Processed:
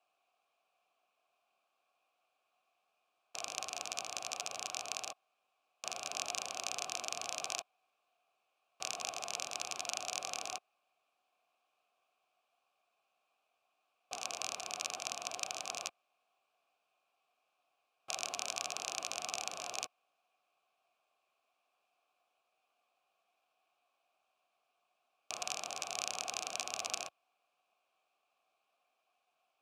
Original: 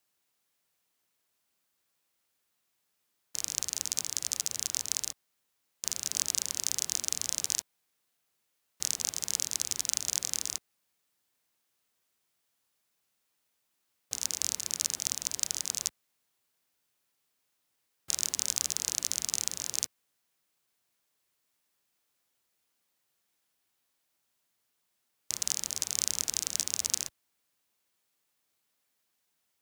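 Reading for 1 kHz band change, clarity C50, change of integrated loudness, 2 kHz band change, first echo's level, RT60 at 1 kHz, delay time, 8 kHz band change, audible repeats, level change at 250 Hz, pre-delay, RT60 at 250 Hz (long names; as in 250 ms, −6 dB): +9.5 dB, no reverb audible, −9.0 dB, +3.0 dB, no echo audible, no reverb audible, no echo audible, −11.5 dB, no echo audible, −6.5 dB, no reverb audible, no reverb audible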